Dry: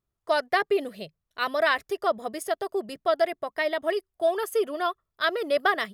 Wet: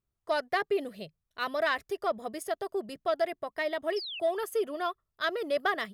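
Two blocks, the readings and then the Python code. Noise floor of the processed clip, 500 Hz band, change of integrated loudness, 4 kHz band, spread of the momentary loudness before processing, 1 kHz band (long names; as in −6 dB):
−84 dBFS, −5.0 dB, −5.0 dB, −4.5 dB, 7 LU, −5.5 dB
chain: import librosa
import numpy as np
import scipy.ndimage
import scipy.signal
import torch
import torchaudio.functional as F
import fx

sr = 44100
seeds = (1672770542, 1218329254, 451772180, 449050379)

p1 = fx.low_shelf(x, sr, hz=210.0, db=4.5)
p2 = fx.spec_paint(p1, sr, seeds[0], shape='fall', start_s=3.96, length_s=0.24, low_hz=2500.0, high_hz=5600.0, level_db=-34.0)
p3 = 10.0 ** (-20.5 / 20.0) * np.tanh(p2 / 10.0 ** (-20.5 / 20.0))
p4 = p2 + (p3 * 10.0 ** (-8.5 / 20.0))
y = p4 * 10.0 ** (-7.5 / 20.0)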